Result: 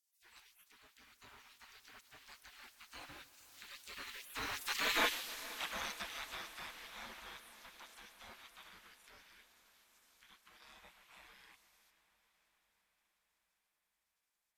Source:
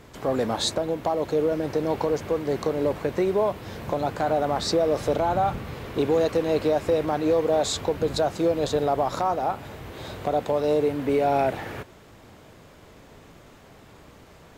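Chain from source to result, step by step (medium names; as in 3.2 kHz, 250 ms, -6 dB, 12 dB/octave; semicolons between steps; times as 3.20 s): Doppler pass-by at 5.00 s, 27 m/s, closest 4.6 m; spectral gate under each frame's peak -30 dB weak; on a send: echo that smears into a reverb 508 ms, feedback 67%, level -16 dB; on the sum: modulated delay 150 ms, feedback 65%, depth 142 cents, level -19 dB; trim +13 dB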